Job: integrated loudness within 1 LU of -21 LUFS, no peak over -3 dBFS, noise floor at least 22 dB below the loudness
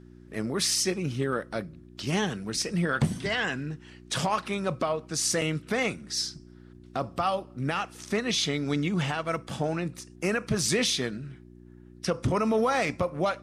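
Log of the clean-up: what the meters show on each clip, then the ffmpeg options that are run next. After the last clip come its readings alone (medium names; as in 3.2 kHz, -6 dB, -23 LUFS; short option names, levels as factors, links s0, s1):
hum 60 Hz; highest harmonic 360 Hz; hum level -49 dBFS; loudness -28.5 LUFS; peak level -15.0 dBFS; loudness target -21.0 LUFS
-> -af "bandreject=f=60:t=h:w=4,bandreject=f=120:t=h:w=4,bandreject=f=180:t=h:w=4,bandreject=f=240:t=h:w=4,bandreject=f=300:t=h:w=4,bandreject=f=360:t=h:w=4"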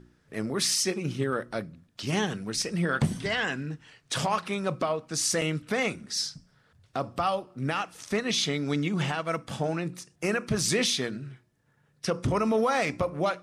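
hum not found; loudness -28.5 LUFS; peak level -15.0 dBFS; loudness target -21.0 LUFS
-> -af "volume=2.37"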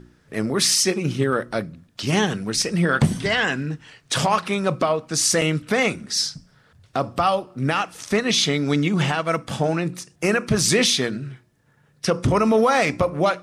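loudness -21.0 LUFS; peak level -7.5 dBFS; noise floor -59 dBFS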